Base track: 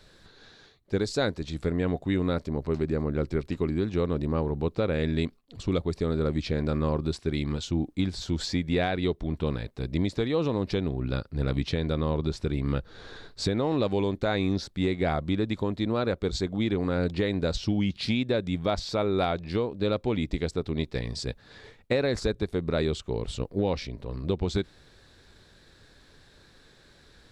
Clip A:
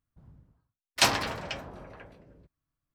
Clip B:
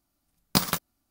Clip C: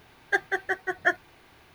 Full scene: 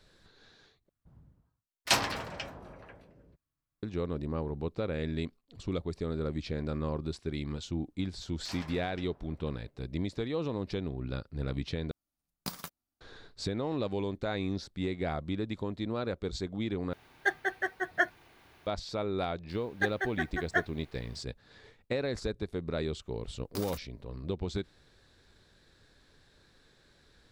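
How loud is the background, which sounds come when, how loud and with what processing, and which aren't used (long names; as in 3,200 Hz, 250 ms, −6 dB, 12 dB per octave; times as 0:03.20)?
base track −7 dB
0:00.89: overwrite with A −3.5 dB
0:07.47: mix in A −17 dB + brickwall limiter −16 dBFS
0:11.91: overwrite with B −15.5 dB
0:16.93: overwrite with C −4 dB
0:19.49: mix in C −6 dB
0:23.00: mix in B −11.5 dB + brickwall limiter −14.5 dBFS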